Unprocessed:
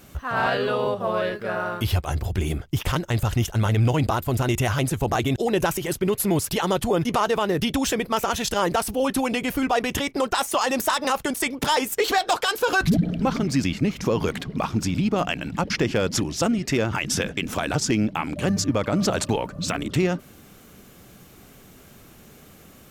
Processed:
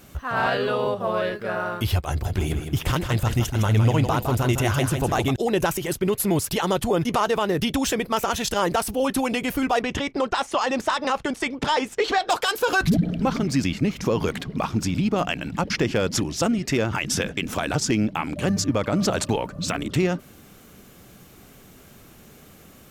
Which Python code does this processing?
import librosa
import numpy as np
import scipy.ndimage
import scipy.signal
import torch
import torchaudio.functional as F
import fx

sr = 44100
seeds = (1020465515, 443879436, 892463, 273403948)

y = fx.echo_feedback(x, sr, ms=160, feedback_pct=29, wet_db=-7.0, at=(2.24, 5.3), fade=0.02)
y = fx.air_absorb(y, sr, metres=92.0, at=(9.8, 12.29), fade=0.02)